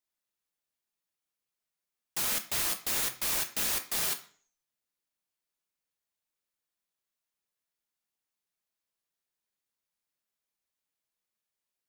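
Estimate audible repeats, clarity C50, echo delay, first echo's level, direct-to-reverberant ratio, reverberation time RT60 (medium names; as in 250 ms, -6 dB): no echo, 12.5 dB, no echo, no echo, 5.5 dB, 0.45 s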